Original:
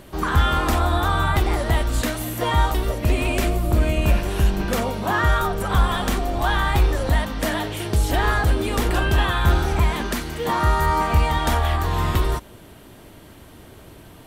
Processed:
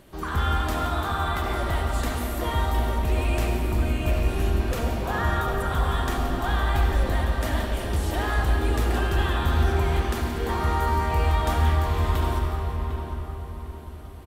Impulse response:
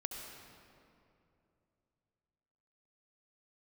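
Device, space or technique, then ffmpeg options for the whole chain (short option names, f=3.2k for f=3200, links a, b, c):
cave: -filter_complex "[0:a]asettb=1/sr,asplit=3[a][b][c];[a]atrim=end=0.624[d];[b]atrim=start=0.62:end=1.49,asetpts=PTS-STARTPTS,afade=t=in:d=0.004:c=qsin,afade=t=out:st=0.866:d=0.004:c=qsin,highpass=f=200:p=1[e];[c]atrim=start=1.486[f];[d][e]acrossfade=d=0.004:c1=hsin:c2=qsin[g];[g][f]acrossfade=d=0.004:c1=qsin:c2=hsin,aecho=1:1:365:0.2,asplit=2[h][i];[i]adelay=752,lowpass=f=2.3k:p=1,volume=-7.5dB,asplit=2[j][k];[k]adelay=752,lowpass=f=2.3k:p=1,volume=0.39,asplit=2[l][m];[m]adelay=752,lowpass=f=2.3k:p=1,volume=0.39,asplit=2[n][o];[o]adelay=752,lowpass=f=2.3k:p=1,volume=0.39[p];[h][j][l][n][p]amix=inputs=5:normalize=0[q];[1:a]atrim=start_sample=2205[r];[q][r]afir=irnorm=-1:irlink=0,volume=-5.5dB"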